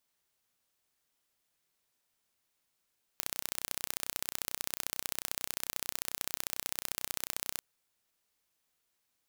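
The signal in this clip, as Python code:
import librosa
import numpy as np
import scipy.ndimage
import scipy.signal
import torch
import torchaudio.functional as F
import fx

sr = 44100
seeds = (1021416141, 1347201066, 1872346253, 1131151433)

y = fx.impulse_train(sr, length_s=4.4, per_s=31.2, accent_every=2, level_db=-5.5)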